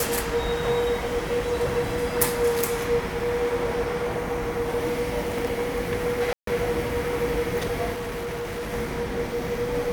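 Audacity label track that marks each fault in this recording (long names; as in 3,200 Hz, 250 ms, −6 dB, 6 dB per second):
6.330000	6.470000	drop-out 143 ms
7.930000	8.730000	clipping −28 dBFS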